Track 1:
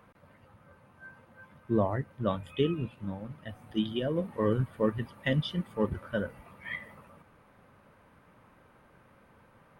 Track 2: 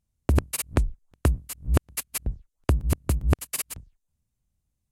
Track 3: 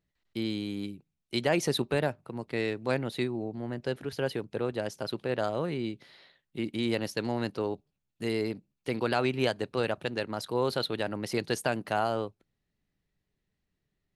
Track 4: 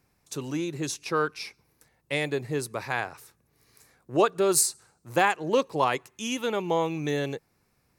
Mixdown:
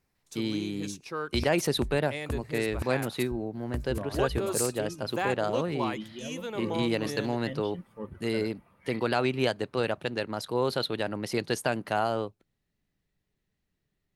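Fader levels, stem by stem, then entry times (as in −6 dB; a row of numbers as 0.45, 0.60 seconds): −10.5, −13.0, +1.0, −8.5 decibels; 2.20, 1.05, 0.00, 0.00 seconds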